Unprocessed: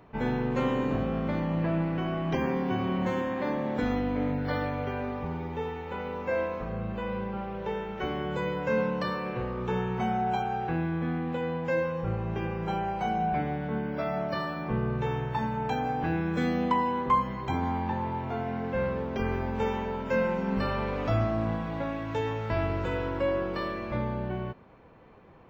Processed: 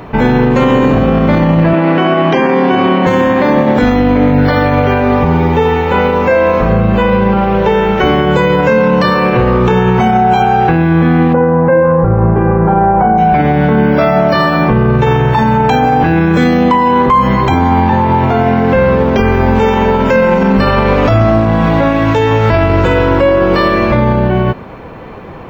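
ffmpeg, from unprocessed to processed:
ffmpeg -i in.wav -filter_complex "[0:a]asettb=1/sr,asplit=3[link_01][link_02][link_03];[link_01]atrim=end=1.734[link_04];[link_02]atrim=start=1.73:end=3.07,asetpts=PTS-STARTPTS,afade=type=in:duration=0.004:curve=qsin,afade=type=out:start_time=1.336:duration=0.004:curve=qsin,highpass=260,lowpass=4900[link_05];[link_03]atrim=start=3.066[link_06];[link_04][link_05]acrossfade=duration=0.004:curve1=hsin:curve2=qsin[link_07];[link_07][link_06]acrossfade=duration=0.004:curve1=qsin:curve2=hsin,asplit=3[link_08][link_09][link_10];[link_08]afade=type=out:start_time=11.32:duration=0.02[link_11];[link_09]lowpass=frequency=1500:width=0.5412,lowpass=frequency=1500:width=1.3066,afade=type=in:start_time=11.32:duration=0.02,afade=type=out:start_time=13.17:duration=0.02[link_12];[link_10]afade=type=in:start_time=13.17:duration=0.02[link_13];[link_11][link_12][link_13]amix=inputs=3:normalize=0,acontrast=83,alimiter=level_in=19dB:limit=-1dB:release=50:level=0:latency=1,volume=-1dB" out.wav

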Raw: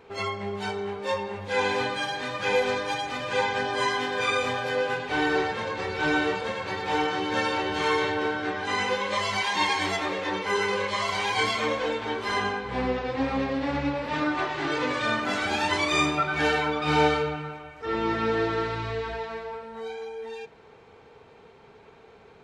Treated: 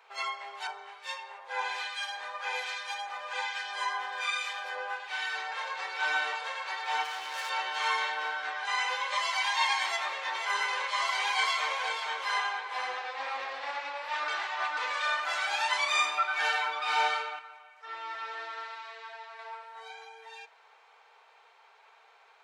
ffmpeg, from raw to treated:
ffmpeg -i in.wav -filter_complex "[0:a]asettb=1/sr,asplit=3[link_01][link_02][link_03];[link_01]atrim=end=0.674[link_04];[link_02]atrim=start=0.67:end=5.52,asetpts=PTS-STARTPTS,afade=type=in:duration=0.004:curve=qsin,afade=type=out:start_time=4.846:duration=0.004:curve=qsin,acrossover=split=1600[link_05][link_06];[link_05]aeval=exprs='val(0)*(1-0.7/2+0.7/2*cos(2*PI*1.2*n/s))':channel_layout=same[link_07];[link_06]aeval=exprs='val(0)*(1-0.7/2-0.7/2*cos(2*PI*1.2*n/s))':channel_layout=same[link_08];[link_07][link_08]amix=inputs=2:normalize=0[link_09];[link_03]atrim=start=5.516[link_10];[link_04][link_09]acrossfade=duration=0.004:curve1=hsin:curve2=qsin[link_11];[link_11][link_10]acrossfade=duration=0.004:curve1=qsin:curve2=hsin,asplit=3[link_12][link_13][link_14];[link_12]afade=type=out:start_time=7.03:duration=0.02[link_15];[link_13]asoftclip=type=hard:threshold=-29.5dB,afade=type=in:start_time=7.03:duration=0.02,afade=type=out:start_time=7.49:duration=0.02[link_16];[link_14]afade=type=in:start_time=7.49:duration=0.02[link_17];[link_15][link_16][link_17]amix=inputs=3:normalize=0,asettb=1/sr,asplit=3[link_18][link_19][link_20];[link_18]atrim=end=9.864[link_21];[link_19]atrim=start=9.86:end=13.71,asetpts=PTS-STARTPTS,afade=type=in:duration=0.004:curve=qsin,afade=type=out:start_time=3.846:duration=0.004:curve=qsin,aecho=1:1:487:0.398,atrim=end_sample=169785[link_22];[link_20]atrim=start=13.706[link_23];[link_21][link_22]acrossfade=duration=0.004:curve1=hsin:curve2=qsin[link_24];[link_24][link_23]acrossfade=duration=0.004:curve1=qsin:curve2=hsin,asplit=5[link_25][link_26][link_27][link_28][link_29];[link_25]atrim=end=14.282[link_30];[link_26]atrim=start=14.278:end=14.772,asetpts=PTS-STARTPTS,areverse[link_31];[link_27]atrim=start=14.768:end=17.392[link_32];[link_28]atrim=start=17.388:end=19.392,asetpts=PTS-STARTPTS,volume=-6dB[link_33];[link_29]atrim=start=19.388[link_34];[link_30][link_31]acrossfade=duration=0.004:curve1=hsin:curve2=hsin[link_35];[link_35][link_32]acrossfade=duration=0.004:curve1=hsin:curve2=hsin[link_36];[link_36][link_33]acrossfade=duration=0.004:curve1=hsin:curve2=hsin[link_37];[link_37][link_34]acrossfade=duration=0.004:curve1=hsin:curve2=hsin,highpass=frequency=750:width=0.5412,highpass=frequency=750:width=1.3066,volume=-2dB" out.wav

